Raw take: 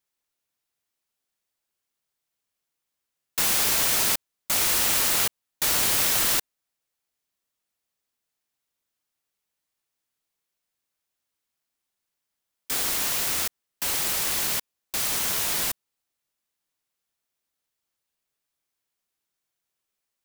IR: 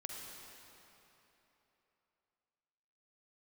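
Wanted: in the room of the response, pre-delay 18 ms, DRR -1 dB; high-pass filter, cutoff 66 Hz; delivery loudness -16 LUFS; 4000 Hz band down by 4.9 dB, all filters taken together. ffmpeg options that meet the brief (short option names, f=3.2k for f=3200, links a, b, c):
-filter_complex "[0:a]highpass=66,equalizer=f=4k:t=o:g=-6.5,asplit=2[a][b];[1:a]atrim=start_sample=2205,adelay=18[c];[b][c]afir=irnorm=-1:irlink=0,volume=2.5dB[d];[a][d]amix=inputs=2:normalize=0,volume=4.5dB"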